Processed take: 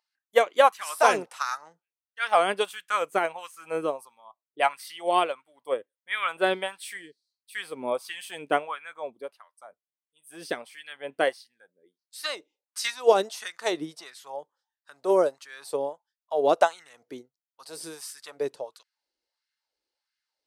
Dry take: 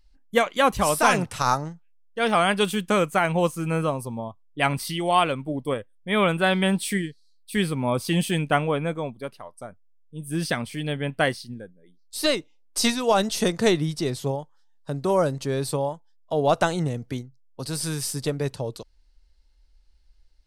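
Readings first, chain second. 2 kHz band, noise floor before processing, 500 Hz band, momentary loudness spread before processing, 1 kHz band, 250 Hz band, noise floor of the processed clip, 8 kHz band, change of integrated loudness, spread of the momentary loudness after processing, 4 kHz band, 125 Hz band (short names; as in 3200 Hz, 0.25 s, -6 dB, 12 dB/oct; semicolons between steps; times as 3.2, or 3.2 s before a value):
-4.0 dB, -57 dBFS, -1.5 dB, 16 LU, -1.5 dB, -13.0 dB, under -85 dBFS, -8.5 dB, -2.5 dB, 19 LU, -6.0 dB, -25.5 dB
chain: LFO high-pass sine 1.5 Hz 350–1700 Hz; upward expander 1.5:1, over -27 dBFS; gain -2 dB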